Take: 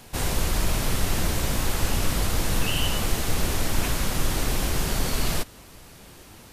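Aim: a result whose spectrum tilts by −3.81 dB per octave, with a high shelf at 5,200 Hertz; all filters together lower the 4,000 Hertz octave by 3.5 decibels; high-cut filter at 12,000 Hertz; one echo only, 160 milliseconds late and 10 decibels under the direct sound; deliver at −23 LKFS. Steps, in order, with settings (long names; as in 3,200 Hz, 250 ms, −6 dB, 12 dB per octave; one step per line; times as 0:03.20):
low-pass filter 12,000 Hz
parametric band 4,000 Hz −6.5 dB
high-shelf EQ 5,200 Hz +3.5 dB
single-tap delay 160 ms −10 dB
level +3.5 dB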